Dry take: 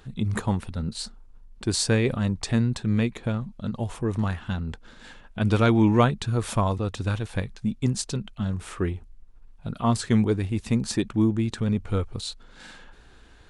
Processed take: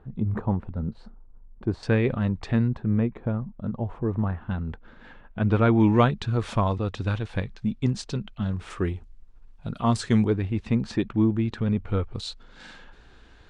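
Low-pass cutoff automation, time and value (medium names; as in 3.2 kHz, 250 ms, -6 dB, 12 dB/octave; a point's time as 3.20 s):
1 kHz
from 1.83 s 2.5 kHz
from 2.68 s 1.2 kHz
from 4.51 s 2 kHz
from 5.80 s 4.3 kHz
from 8.70 s 7.4 kHz
from 10.28 s 3 kHz
from 12.15 s 5.7 kHz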